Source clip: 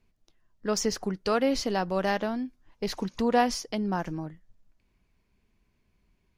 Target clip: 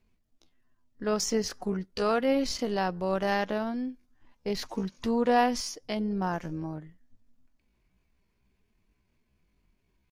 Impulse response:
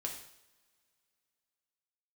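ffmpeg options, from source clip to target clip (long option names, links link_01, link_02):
-af "tremolo=f=250:d=0.261,atempo=0.63"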